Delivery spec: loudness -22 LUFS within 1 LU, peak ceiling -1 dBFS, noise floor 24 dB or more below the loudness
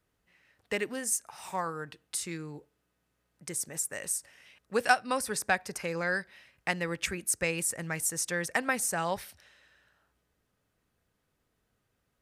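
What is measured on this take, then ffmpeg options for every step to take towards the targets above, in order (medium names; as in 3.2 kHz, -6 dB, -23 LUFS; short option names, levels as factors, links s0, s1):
loudness -31.5 LUFS; peak level -8.5 dBFS; loudness target -22.0 LUFS
-> -af "volume=2.99,alimiter=limit=0.891:level=0:latency=1"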